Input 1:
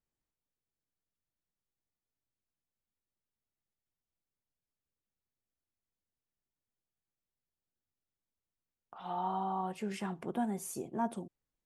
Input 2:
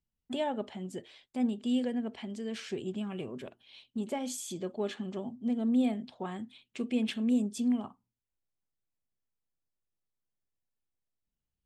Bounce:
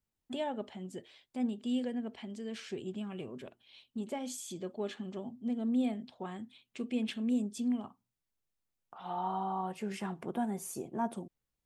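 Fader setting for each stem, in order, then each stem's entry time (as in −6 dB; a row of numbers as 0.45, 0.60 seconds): 0.0, −3.5 decibels; 0.00, 0.00 seconds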